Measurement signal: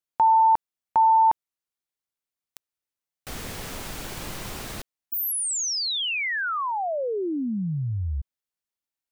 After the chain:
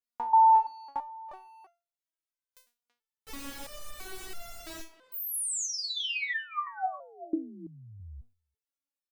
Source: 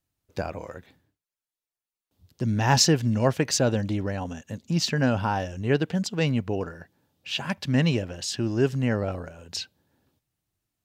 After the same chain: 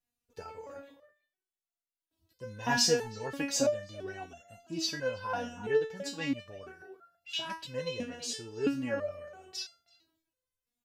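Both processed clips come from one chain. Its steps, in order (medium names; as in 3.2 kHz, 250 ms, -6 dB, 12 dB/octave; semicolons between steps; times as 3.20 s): speakerphone echo 330 ms, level -14 dB; resonator arpeggio 3 Hz 240–690 Hz; trim +8 dB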